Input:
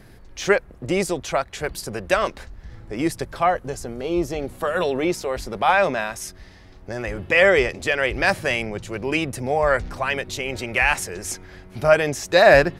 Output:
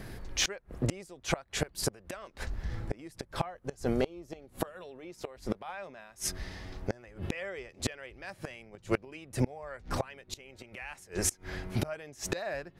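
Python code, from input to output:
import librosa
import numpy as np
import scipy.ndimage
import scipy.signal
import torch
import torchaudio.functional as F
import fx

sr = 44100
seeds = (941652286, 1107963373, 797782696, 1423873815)

y = fx.gate_flip(x, sr, shuts_db=-19.0, range_db=-28)
y = y * librosa.db_to_amplitude(3.5)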